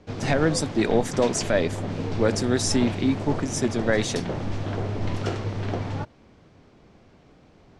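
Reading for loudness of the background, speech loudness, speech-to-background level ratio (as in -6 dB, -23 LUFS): -31.0 LUFS, -24.5 LUFS, 6.5 dB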